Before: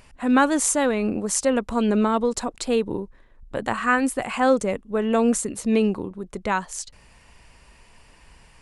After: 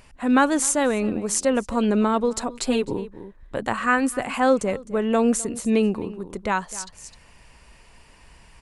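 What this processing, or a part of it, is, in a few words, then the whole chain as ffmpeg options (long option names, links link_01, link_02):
ducked delay: -filter_complex "[0:a]asplit=3[link_01][link_02][link_03];[link_02]adelay=258,volume=-7dB[link_04];[link_03]apad=whole_len=391481[link_05];[link_04][link_05]sidechaincompress=threshold=-32dB:ratio=8:attack=5.4:release=472[link_06];[link_01][link_06]amix=inputs=2:normalize=0,asettb=1/sr,asplit=3[link_07][link_08][link_09];[link_07]atrim=end=2.494[link_10];[link_08]atrim=start=2.49:end=2.93,asetpts=PTS-STARTPTS,afade=type=in:duration=0.004:curve=qsin,afade=type=out:start_time=0.436:duration=0.004:curve=qsin,aecho=1:1:7.5:0.82,atrim=end_sample=19404[link_11];[link_09]atrim=start=2.926[link_12];[link_10][link_11]acrossfade=duration=0.004:curve1=hsin:curve2=qsin[link_13];[link_13][link_12]acrossfade=duration=0.004:curve1=qsin:curve2=hsin"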